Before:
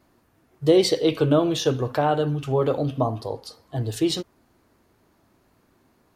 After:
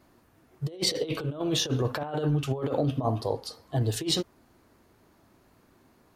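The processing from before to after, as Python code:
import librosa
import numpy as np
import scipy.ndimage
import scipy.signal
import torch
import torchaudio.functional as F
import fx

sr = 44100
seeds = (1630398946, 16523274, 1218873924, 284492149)

y = fx.over_compress(x, sr, threshold_db=-24.0, ratio=-0.5)
y = fx.band_widen(y, sr, depth_pct=70, at=(2.03, 2.97))
y = y * librosa.db_to_amplitude(-2.5)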